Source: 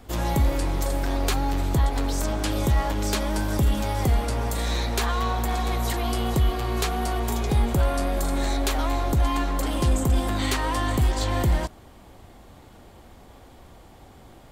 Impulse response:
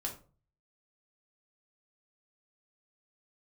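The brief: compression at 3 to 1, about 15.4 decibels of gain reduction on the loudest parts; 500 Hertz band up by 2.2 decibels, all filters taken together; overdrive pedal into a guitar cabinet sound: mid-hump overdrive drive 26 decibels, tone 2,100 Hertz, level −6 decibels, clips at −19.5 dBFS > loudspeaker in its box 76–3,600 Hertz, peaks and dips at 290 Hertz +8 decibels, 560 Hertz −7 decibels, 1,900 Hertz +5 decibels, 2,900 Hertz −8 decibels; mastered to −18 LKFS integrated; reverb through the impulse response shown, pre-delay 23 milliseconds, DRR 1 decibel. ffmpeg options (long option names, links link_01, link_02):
-filter_complex "[0:a]equalizer=frequency=500:width_type=o:gain=5.5,acompressor=threshold=-38dB:ratio=3,asplit=2[link_01][link_02];[1:a]atrim=start_sample=2205,adelay=23[link_03];[link_02][link_03]afir=irnorm=-1:irlink=0,volume=-1.5dB[link_04];[link_01][link_04]amix=inputs=2:normalize=0,asplit=2[link_05][link_06];[link_06]highpass=frequency=720:poles=1,volume=26dB,asoftclip=type=tanh:threshold=-19.5dB[link_07];[link_05][link_07]amix=inputs=2:normalize=0,lowpass=frequency=2100:poles=1,volume=-6dB,highpass=76,equalizer=frequency=290:width_type=q:width=4:gain=8,equalizer=frequency=560:width_type=q:width=4:gain=-7,equalizer=frequency=1900:width_type=q:width=4:gain=5,equalizer=frequency=2900:width_type=q:width=4:gain=-8,lowpass=frequency=3600:width=0.5412,lowpass=frequency=3600:width=1.3066,volume=10.5dB"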